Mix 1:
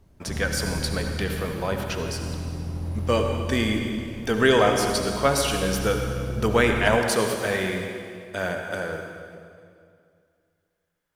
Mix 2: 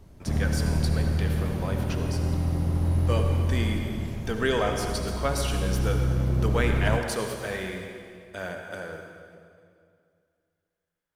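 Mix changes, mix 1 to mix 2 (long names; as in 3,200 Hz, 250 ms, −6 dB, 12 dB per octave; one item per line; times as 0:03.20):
speech −7.0 dB
background +6.0 dB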